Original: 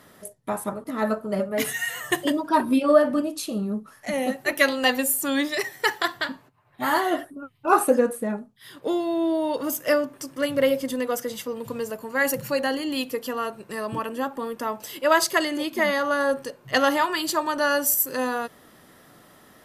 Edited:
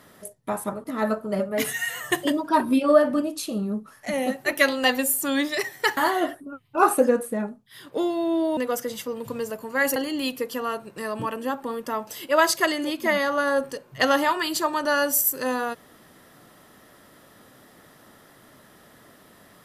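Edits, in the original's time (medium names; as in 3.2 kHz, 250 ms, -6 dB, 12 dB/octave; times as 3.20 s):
5.97–6.87 s: delete
9.47–10.97 s: delete
12.36–12.69 s: delete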